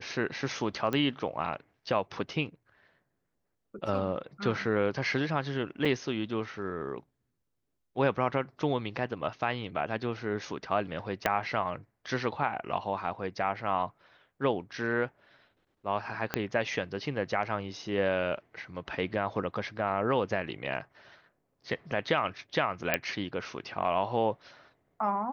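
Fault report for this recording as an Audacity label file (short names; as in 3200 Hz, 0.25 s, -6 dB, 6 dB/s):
0.930000	0.930000	pop -18 dBFS
5.850000	5.860000	gap 5 ms
11.260000	11.260000	pop -11 dBFS
16.340000	16.340000	pop -13 dBFS
22.940000	22.940000	pop -10 dBFS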